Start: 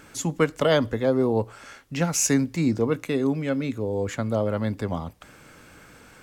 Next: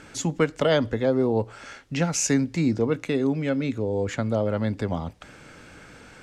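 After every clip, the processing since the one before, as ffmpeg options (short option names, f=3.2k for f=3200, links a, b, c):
-filter_complex "[0:a]asplit=2[a][b];[b]acompressor=threshold=-28dB:ratio=6,volume=-1dB[c];[a][c]amix=inputs=2:normalize=0,lowpass=7.2k,equalizer=f=1.1k:w=5.3:g=-4.5,volume=-2.5dB"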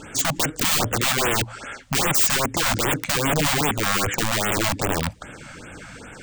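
-af "aeval=exprs='(mod(15*val(0)+1,2)-1)/15':c=same,aexciter=amount=1:drive=4.7:freq=7.1k,afftfilt=real='re*(1-between(b*sr/1024,340*pow(5400/340,0.5+0.5*sin(2*PI*2.5*pts/sr))/1.41,340*pow(5400/340,0.5+0.5*sin(2*PI*2.5*pts/sr))*1.41))':imag='im*(1-between(b*sr/1024,340*pow(5400/340,0.5+0.5*sin(2*PI*2.5*pts/sr))/1.41,340*pow(5400/340,0.5+0.5*sin(2*PI*2.5*pts/sr))*1.41))':win_size=1024:overlap=0.75,volume=7.5dB"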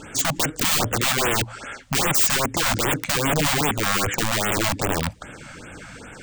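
-af anull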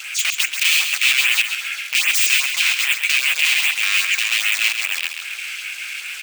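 -af "aeval=exprs='val(0)+0.5*0.0376*sgn(val(0))':c=same,highpass=f=2.5k:t=q:w=5.2,aecho=1:1:134|268|402|536:0.447|0.165|0.0612|0.0226,volume=-1dB"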